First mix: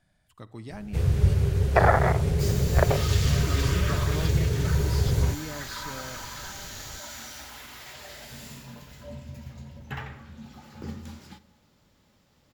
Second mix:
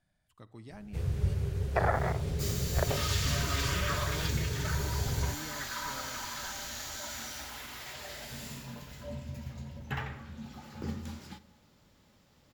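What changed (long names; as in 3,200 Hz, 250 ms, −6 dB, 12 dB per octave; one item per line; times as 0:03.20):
speech −8.0 dB
first sound −9.0 dB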